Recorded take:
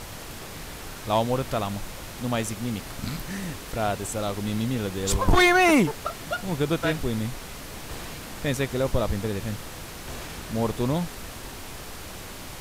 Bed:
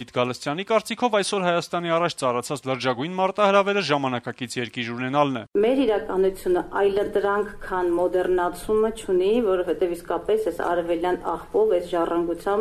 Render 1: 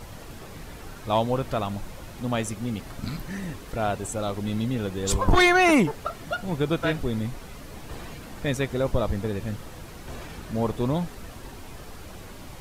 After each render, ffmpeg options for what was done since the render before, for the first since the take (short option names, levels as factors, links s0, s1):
-af "afftdn=nr=8:nf=-39"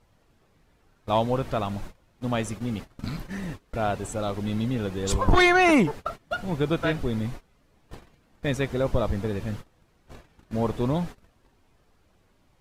-af "agate=range=0.0794:threshold=0.02:ratio=16:detection=peak,highshelf=f=7400:g=-8"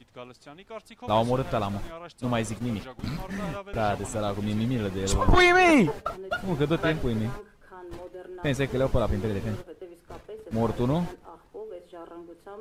-filter_complex "[1:a]volume=0.1[s0];[0:a][s0]amix=inputs=2:normalize=0"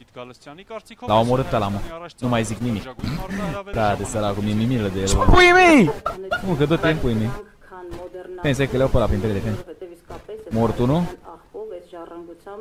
-af "volume=2.11"